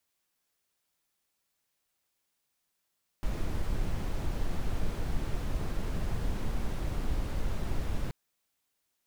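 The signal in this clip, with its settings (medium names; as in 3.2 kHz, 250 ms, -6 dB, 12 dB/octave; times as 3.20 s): noise brown, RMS -29.5 dBFS 4.88 s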